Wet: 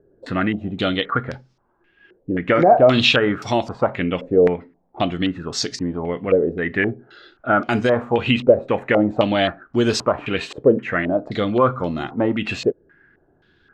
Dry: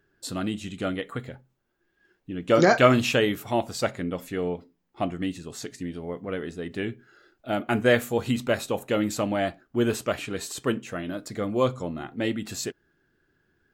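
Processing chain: in parallel at -1.5 dB: compression, threshold -30 dBFS, peak gain reduction 17 dB; on the sum: loudness maximiser +11.5 dB; step-sequenced low-pass 3.8 Hz 520–5200 Hz; trim -7.5 dB

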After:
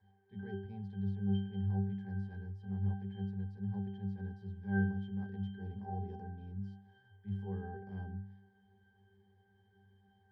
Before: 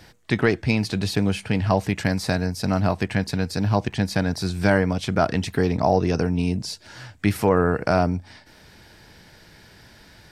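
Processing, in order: band noise 330–2200 Hz -52 dBFS; transient shaper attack -12 dB, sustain +1 dB; pitch-class resonator G, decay 0.6 s; trim -3 dB

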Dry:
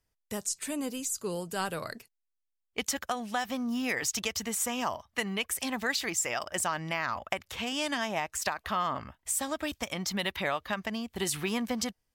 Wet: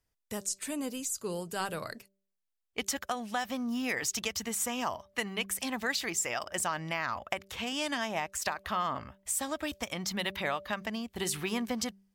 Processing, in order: de-hum 195.1 Hz, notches 3; trim -1.5 dB

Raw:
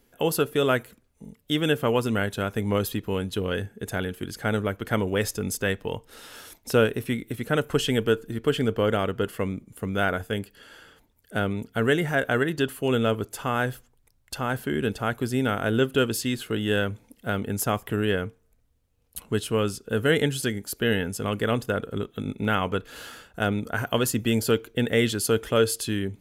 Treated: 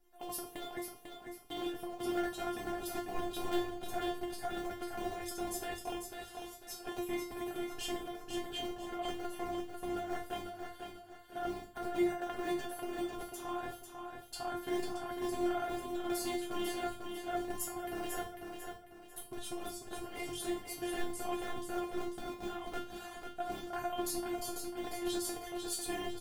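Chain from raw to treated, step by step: cycle switcher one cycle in 3, muted; peaking EQ 780 Hz +13 dB 0.32 oct; compressor with a negative ratio -26 dBFS, ratio -0.5; feedback comb 350 Hz, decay 0.32 s, harmonics all, mix 100%; feedback delay 496 ms, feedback 36%, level -6 dB; on a send at -9 dB: reverberation RT60 0.40 s, pre-delay 3 ms; on the sum: trim +3.5 dB

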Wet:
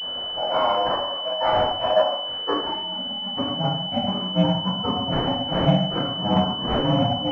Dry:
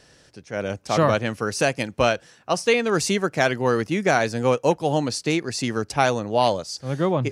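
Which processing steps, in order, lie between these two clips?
frequency axis rescaled in octaves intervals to 109%; in parallel at +1.5 dB: compression 20:1, threshold -32 dBFS, peak gain reduction 17 dB; on the sum: hum notches 50/100/150/200/250 Hz; inverted gate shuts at -14 dBFS, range -27 dB; peak limiter -23 dBFS, peak gain reduction 10.5 dB; reverberation RT60 0.70 s, pre-delay 3 ms, DRR -12 dB; ring modulator 410 Hz; hard clipper -13.5 dBFS, distortion -18 dB; high-pass sweep 600 Hz -> 160 Hz, 2.24–3.32 s; class-D stage that switches slowly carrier 3 kHz

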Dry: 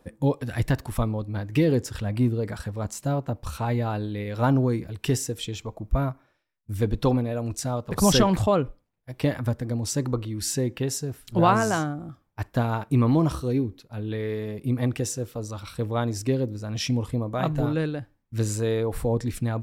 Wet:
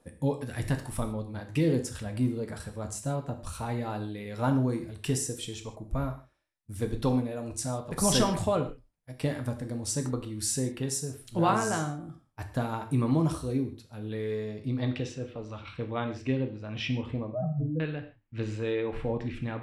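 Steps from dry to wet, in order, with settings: 17.31–17.80 s: spectral contrast enhancement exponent 3.5; hum notches 50/100 Hz; gated-style reverb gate 180 ms falling, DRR 5 dB; low-pass sweep 10 kHz -> 2.7 kHz, 14.15–15.24 s; trim -6.5 dB

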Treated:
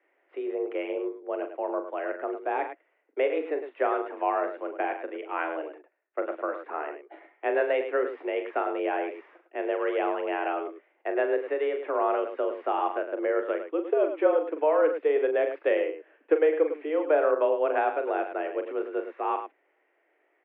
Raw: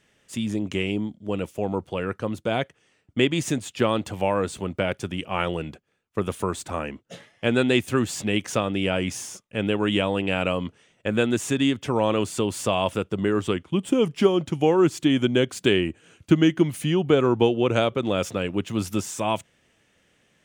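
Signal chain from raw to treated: mistuned SSB +150 Hz 180–2100 Hz; multi-tap echo 41/105 ms -8.5/-9.5 dB; trim -4 dB

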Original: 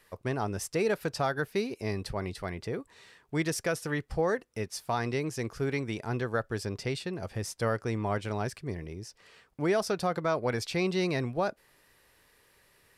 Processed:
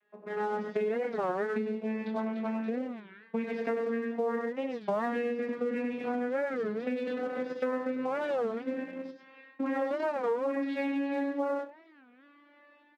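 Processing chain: vocoder on a note that slides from G#3, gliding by +6 st; low-pass 3.1 kHz 24 dB/octave; delay 98 ms -4 dB; on a send at -1 dB: reverberation RT60 0.45 s, pre-delay 22 ms; on the sum: level rider gain up to 13.5 dB; in parallel at -3 dB: crossover distortion -31.5 dBFS; on the sum: compression 6:1, threshold -21 dBFS, peak gain reduction 16 dB; high-pass 280 Hz 6 dB/octave; warped record 33 1/3 rpm, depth 250 cents; trim -6.5 dB

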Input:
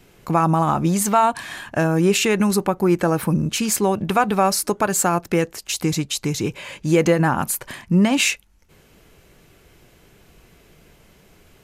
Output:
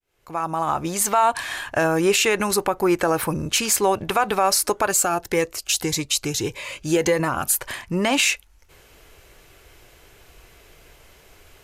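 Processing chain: fade-in on the opening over 1.30 s; peaking EQ 190 Hz -14 dB 1.3 oct; peak limiter -12.5 dBFS, peak gain reduction 6.5 dB; 4.91–7.59 s: Shepard-style phaser rising 1.7 Hz; trim +4 dB

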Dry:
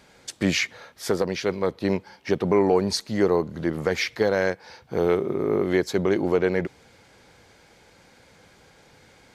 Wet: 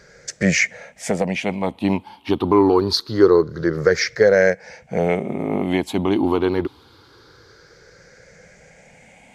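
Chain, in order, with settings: drifting ripple filter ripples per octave 0.56, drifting +0.25 Hz, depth 15 dB; treble shelf 11 kHz -8.5 dB; trim +2.5 dB

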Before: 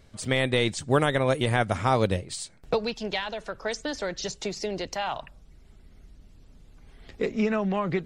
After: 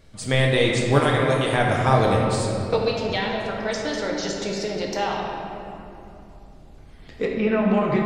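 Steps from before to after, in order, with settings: 1.00–1.53 s: bass shelf 490 Hz -11 dB; 7.25–7.70 s: inverse Chebyshev low-pass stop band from 7.4 kHz, stop band 40 dB; simulated room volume 130 m³, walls hard, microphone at 0.52 m; trim +1 dB

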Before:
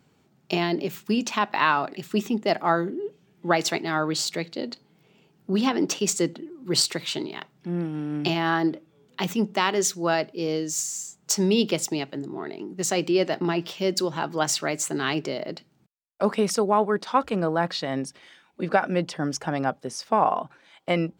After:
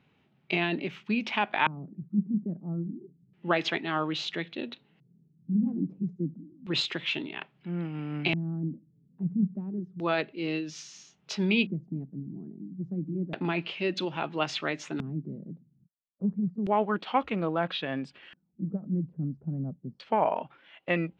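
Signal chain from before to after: LFO low-pass square 0.3 Hz 210–3200 Hz; formant shift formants -2 st; trim -5 dB

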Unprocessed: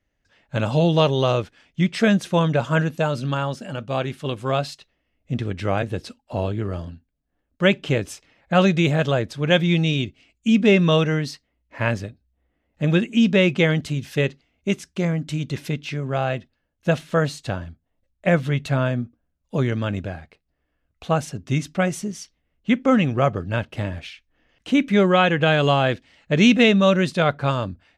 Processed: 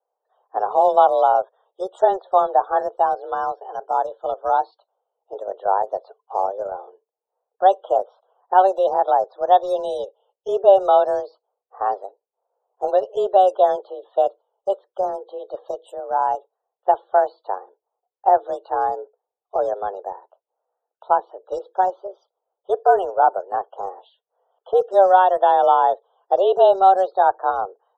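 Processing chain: mistuned SSB +190 Hz 320–3000 Hz; in parallel at -9 dB: small samples zeroed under -26.5 dBFS; on the sum: Butterworth band-stop 2.3 kHz, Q 0.54; loudest bins only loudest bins 64; trim +4.5 dB

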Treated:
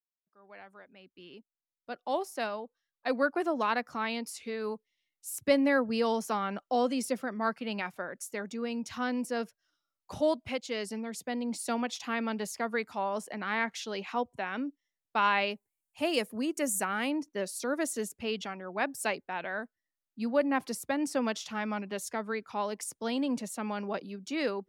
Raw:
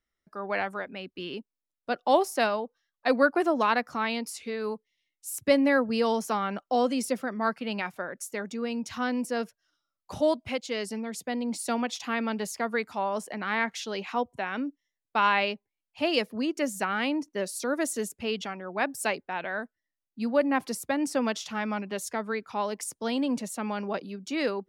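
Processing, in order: fade-in on the opening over 4.52 s; 15.50–17.11 s: resonant high shelf 6.3 kHz +9.5 dB, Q 1.5; trim -3 dB

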